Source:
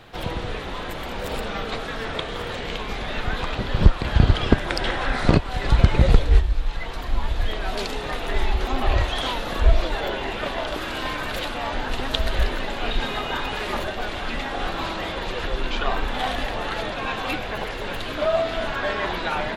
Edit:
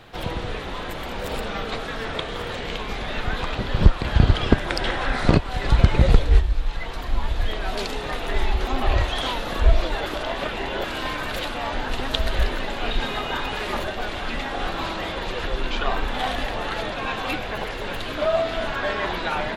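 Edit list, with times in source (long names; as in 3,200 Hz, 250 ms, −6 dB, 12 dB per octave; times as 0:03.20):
0:10.06–0:10.84: reverse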